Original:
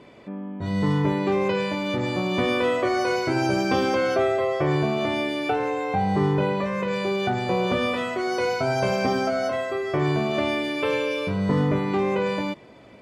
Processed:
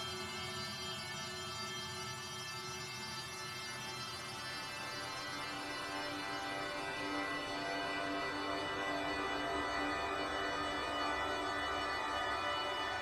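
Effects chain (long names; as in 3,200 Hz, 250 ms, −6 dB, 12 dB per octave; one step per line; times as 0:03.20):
gate on every frequency bin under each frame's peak −20 dB weak
extreme stretch with random phases 21×, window 0.50 s, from 0:11.00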